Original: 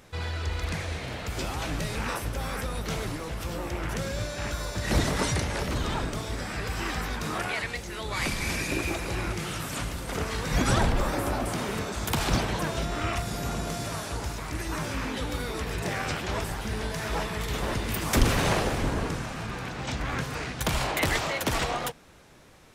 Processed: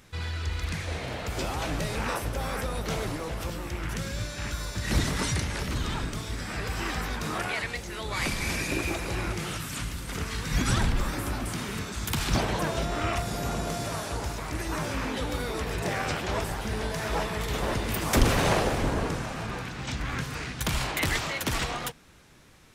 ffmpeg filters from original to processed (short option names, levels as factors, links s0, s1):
-af "asetnsamples=n=441:p=0,asendcmd='0.87 equalizer g 3;3.5 equalizer g -7;6.48 equalizer g -0.5;9.57 equalizer g -9.5;12.35 equalizer g 2.5;19.62 equalizer g -6',equalizer=f=610:t=o:w=1.5:g=-7"